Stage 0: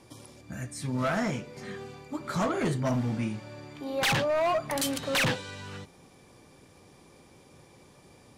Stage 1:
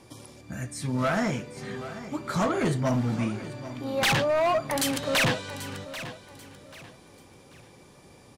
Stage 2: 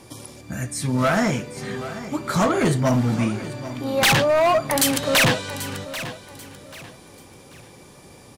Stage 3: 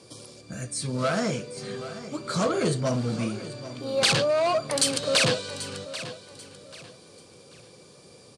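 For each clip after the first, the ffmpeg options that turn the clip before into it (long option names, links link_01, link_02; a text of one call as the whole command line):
ffmpeg -i in.wav -af "aecho=1:1:788|1576|2364:0.2|0.0619|0.0192,volume=2.5dB" out.wav
ffmpeg -i in.wav -af "highshelf=frequency=9000:gain=7,volume=6dB" out.wav
ffmpeg -i in.wav -af "highpass=110,equalizer=frequency=270:width_type=q:width=4:gain=-5,equalizer=frequency=480:width_type=q:width=4:gain=6,equalizer=frequency=870:width_type=q:width=4:gain=-8,equalizer=frequency=1900:width_type=q:width=4:gain=-7,equalizer=frequency=4500:width_type=q:width=4:gain=8,equalizer=frequency=8900:width_type=q:width=4:gain=7,lowpass=frequency=9000:width=0.5412,lowpass=frequency=9000:width=1.3066,volume=-5dB" out.wav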